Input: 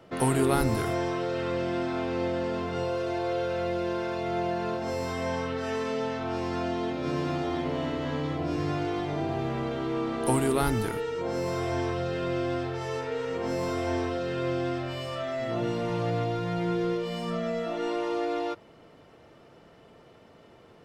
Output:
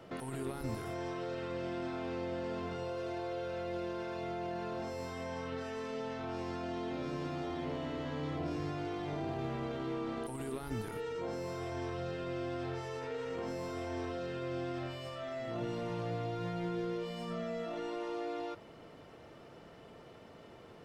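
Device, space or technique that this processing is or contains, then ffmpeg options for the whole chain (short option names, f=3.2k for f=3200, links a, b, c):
de-esser from a sidechain: -filter_complex "[0:a]asplit=2[a][b];[b]highpass=f=4.4k:p=1,apad=whole_len=919259[c];[a][c]sidechaincompress=threshold=-52dB:ratio=10:attack=1.8:release=21"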